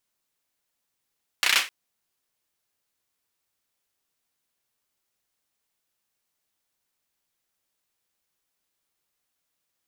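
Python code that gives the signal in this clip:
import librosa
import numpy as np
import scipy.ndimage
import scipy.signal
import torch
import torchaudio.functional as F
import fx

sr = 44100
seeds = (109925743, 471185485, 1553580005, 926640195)

y = fx.drum_clap(sr, seeds[0], length_s=0.26, bursts=5, spacing_ms=32, hz=2300.0, decay_s=0.27)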